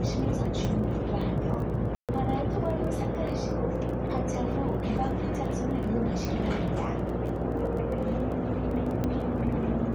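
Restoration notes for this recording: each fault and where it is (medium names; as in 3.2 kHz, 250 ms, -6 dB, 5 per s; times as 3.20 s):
crackle 15 per s -36 dBFS
hum 60 Hz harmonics 8 -33 dBFS
0.65 s: pop -19 dBFS
1.95–2.09 s: dropout 137 ms
6.25 s: pop
9.04 s: pop -17 dBFS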